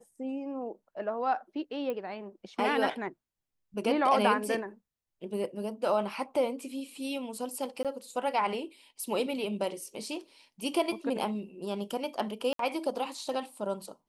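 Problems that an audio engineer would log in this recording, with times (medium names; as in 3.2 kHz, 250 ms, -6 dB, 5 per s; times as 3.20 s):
1.90 s: pop -23 dBFS
7.83–7.85 s: dropout 17 ms
12.53–12.59 s: dropout 63 ms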